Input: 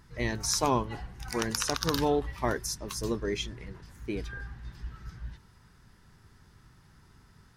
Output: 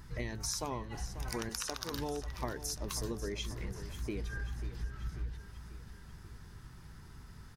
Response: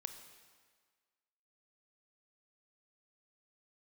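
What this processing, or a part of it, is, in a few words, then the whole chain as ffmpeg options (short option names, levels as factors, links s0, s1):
ASMR close-microphone chain: -filter_complex "[0:a]lowshelf=f=100:g=6.5,acompressor=threshold=0.0126:ratio=6,highshelf=f=10000:g=4.5,asettb=1/sr,asplit=3[s0][s1][s2];[s0]atrim=end=1.494[s3];[s1]atrim=start=1.49:end=1.92,asetpts=PTS-STARTPTS,afade=t=in:d=0.004:c=qsin,afade=t=out:st=0.426:d=0.004:c=qsin,highpass=270[s4];[s2]atrim=start=1.916[s5];[s3][s4]acrossfade=d=0.004:c1=hsin:c2=qsin[s6];[s6][s5]acrossfade=d=0.004:c1=qsin:c2=hsin,aecho=1:1:540|1080|1620|2160|2700|3240:0.224|0.125|0.0702|0.0393|0.022|0.0123,volume=1.33"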